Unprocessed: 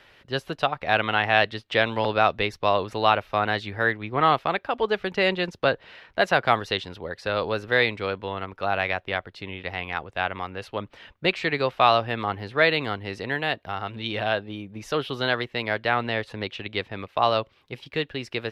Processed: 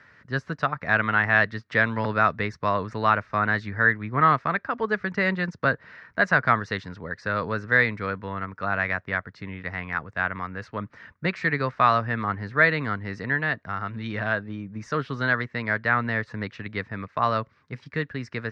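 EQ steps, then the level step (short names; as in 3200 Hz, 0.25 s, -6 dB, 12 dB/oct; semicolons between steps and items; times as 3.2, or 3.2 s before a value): tone controls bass +7 dB, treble +13 dB; speaker cabinet 110–6100 Hz, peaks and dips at 360 Hz -8 dB, 540 Hz -5 dB, 780 Hz -10 dB, 1600 Hz -3 dB; resonant high shelf 2300 Hz -10.5 dB, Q 3; 0.0 dB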